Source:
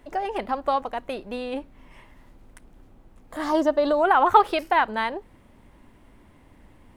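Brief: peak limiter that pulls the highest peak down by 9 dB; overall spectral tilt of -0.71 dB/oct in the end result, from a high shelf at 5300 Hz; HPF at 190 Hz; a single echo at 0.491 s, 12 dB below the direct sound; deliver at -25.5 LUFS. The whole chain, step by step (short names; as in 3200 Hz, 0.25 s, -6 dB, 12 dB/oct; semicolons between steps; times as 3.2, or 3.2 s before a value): HPF 190 Hz; high shelf 5300 Hz +5 dB; limiter -13 dBFS; echo 0.491 s -12 dB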